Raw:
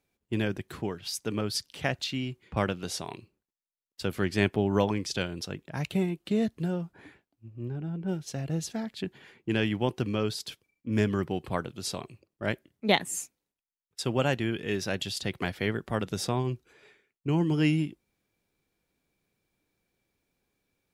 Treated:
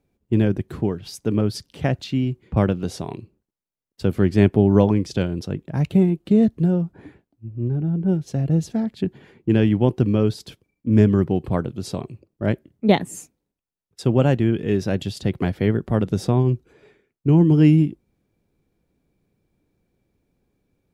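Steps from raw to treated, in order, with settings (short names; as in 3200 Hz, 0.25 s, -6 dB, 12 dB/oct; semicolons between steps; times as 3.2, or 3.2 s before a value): tilt shelf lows +8 dB, about 740 Hz; gain +5 dB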